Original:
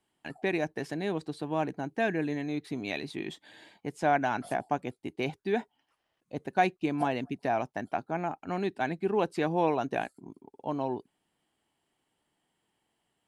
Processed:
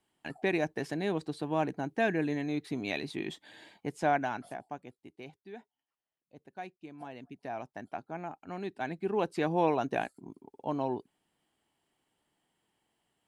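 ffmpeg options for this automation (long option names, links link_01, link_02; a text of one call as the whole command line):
ffmpeg -i in.wav -af "volume=17dB,afade=type=out:start_time=3.92:duration=0.62:silence=0.298538,afade=type=out:start_time=4.54:duration=0.95:silence=0.446684,afade=type=in:start_time=6.97:duration=0.88:silence=0.316228,afade=type=in:start_time=8.58:duration=1.01:silence=0.446684" out.wav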